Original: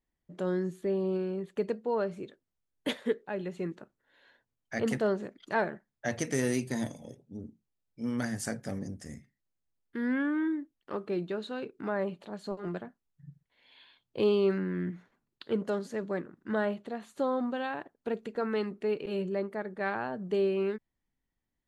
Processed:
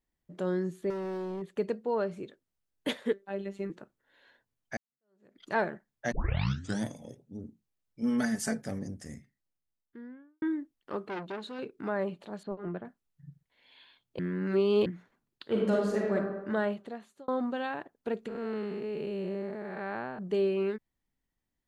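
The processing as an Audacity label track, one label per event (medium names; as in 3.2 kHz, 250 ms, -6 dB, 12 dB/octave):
0.900000	1.420000	hard clipper -33.5 dBFS
3.130000	3.700000	robot voice 197 Hz
4.770000	5.390000	fade in exponential
6.120000	6.120000	tape start 0.73 s
8.020000	8.620000	comb 4.6 ms, depth 82%
9.150000	10.420000	studio fade out
11.030000	11.590000	transformer saturation saturates under 1.4 kHz
12.430000	12.850000	distance through air 430 m
14.190000	14.860000	reverse
15.480000	16.150000	reverb throw, RT60 1.1 s, DRR -2.5 dB
16.770000	17.280000	fade out
18.280000	20.190000	spectral blur width 296 ms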